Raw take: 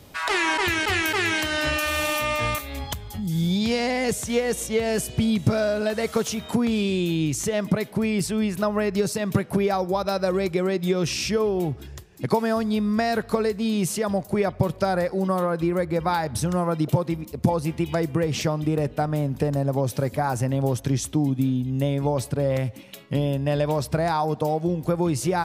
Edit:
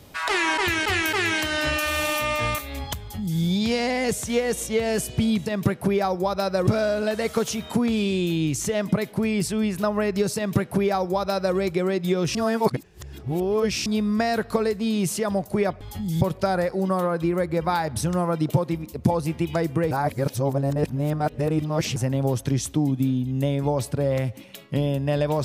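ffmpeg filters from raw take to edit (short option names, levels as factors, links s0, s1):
-filter_complex "[0:a]asplit=9[s0][s1][s2][s3][s4][s5][s6][s7][s8];[s0]atrim=end=5.462[s9];[s1]atrim=start=9.148:end=10.362[s10];[s2]atrim=start=5.458:end=11.142[s11];[s3]atrim=start=11.138:end=12.652,asetpts=PTS-STARTPTS,areverse[s12];[s4]atrim=start=12.648:end=14.602[s13];[s5]atrim=start=2.998:end=3.402[s14];[s6]atrim=start=14.598:end=18.302[s15];[s7]atrim=start=18.298:end=20.352,asetpts=PTS-STARTPTS,areverse[s16];[s8]atrim=start=20.348[s17];[s9][s10]acrossfade=d=0.004:c1=hsin:c2=hsin[s18];[s18][s11]acrossfade=d=0.004:c1=hsin:c2=hsin[s19];[s19][s12]acrossfade=d=0.004:c1=hsin:c2=hsin[s20];[s20][s13]acrossfade=d=0.004:c1=hsin:c2=hsin[s21];[s21][s14]acrossfade=d=0.004:c1=hsin:c2=hsin[s22];[s22][s15]acrossfade=d=0.004:c1=hsin:c2=hsin[s23];[s23][s16]acrossfade=d=0.004:c1=hsin:c2=hsin[s24];[s24][s17]acrossfade=d=0.004:c1=hsin:c2=hsin"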